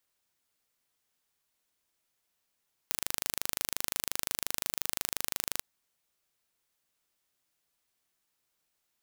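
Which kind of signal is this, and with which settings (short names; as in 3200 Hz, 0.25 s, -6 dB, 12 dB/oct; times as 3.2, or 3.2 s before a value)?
pulse train 25.7/s, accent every 0, -3.5 dBFS 2.71 s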